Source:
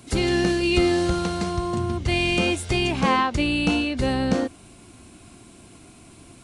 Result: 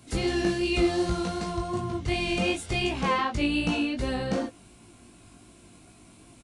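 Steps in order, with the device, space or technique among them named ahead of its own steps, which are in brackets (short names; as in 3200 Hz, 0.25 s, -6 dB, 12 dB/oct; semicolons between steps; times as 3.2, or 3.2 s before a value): double-tracked vocal (doubler 17 ms -11 dB; chorus 2.7 Hz, delay 18 ms, depth 3.4 ms); gain -2.5 dB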